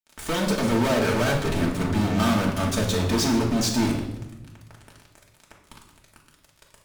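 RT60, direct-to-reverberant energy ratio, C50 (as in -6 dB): 0.95 s, -2.0 dB, 6.0 dB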